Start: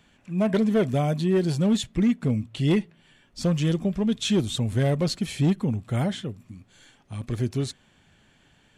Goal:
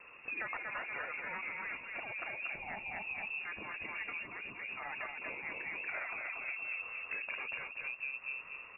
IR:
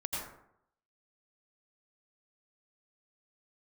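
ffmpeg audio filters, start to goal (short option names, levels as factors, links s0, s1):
-af "aecho=1:1:234|468|702|936|1170:0.631|0.246|0.096|0.0374|0.0146,afftfilt=real='re*lt(hypot(re,im),0.141)':imag='im*lt(hypot(re,im),0.141)':win_size=1024:overlap=0.75,acompressor=threshold=0.00794:ratio=20,lowpass=f=2400:t=q:w=0.5098,lowpass=f=2400:t=q:w=0.6013,lowpass=f=2400:t=q:w=0.9,lowpass=f=2400:t=q:w=2.563,afreqshift=-2800,volume=2"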